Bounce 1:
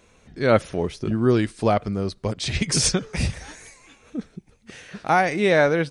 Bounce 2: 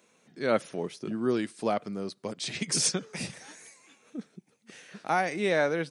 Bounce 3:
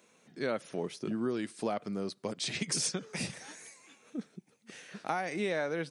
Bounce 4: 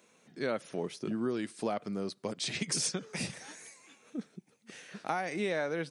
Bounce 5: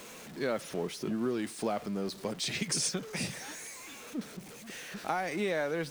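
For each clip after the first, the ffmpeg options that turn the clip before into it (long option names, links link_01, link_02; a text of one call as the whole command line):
ffmpeg -i in.wav -af "highpass=frequency=160:width=0.5412,highpass=frequency=160:width=1.3066,highshelf=frequency=7300:gain=7,volume=-8dB" out.wav
ffmpeg -i in.wav -af "acompressor=threshold=-29dB:ratio=6" out.wav
ffmpeg -i in.wav -af anull out.wav
ffmpeg -i in.wav -af "aeval=exprs='val(0)+0.5*0.00708*sgn(val(0))':channel_layout=same" out.wav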